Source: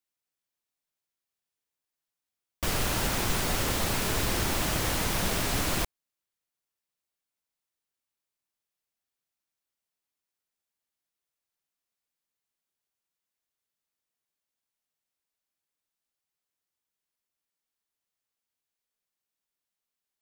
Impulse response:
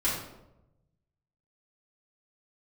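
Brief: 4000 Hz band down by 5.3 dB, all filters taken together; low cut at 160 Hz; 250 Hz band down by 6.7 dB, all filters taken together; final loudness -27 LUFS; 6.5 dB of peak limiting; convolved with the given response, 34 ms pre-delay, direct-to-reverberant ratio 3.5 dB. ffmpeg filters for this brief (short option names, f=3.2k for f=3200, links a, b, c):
-filter_complex "[0:a]highpass=160,equalizer=f=250:t=o:g=-8,equalizer=f=4k:t=o:g=-7,alimiter=level_in=1.5dB:limit=-24dB:level=0:latency=1,volume=-1.5dB,asplit=2[a][b];[1:a]atrim=start_sample=2205,adelay=34[c];[b][c]afir=irnorm=-1:irlink=0,volume=-13dB[d];[a][d]amix=inputs=2:normalize=0,volume=5.5dB"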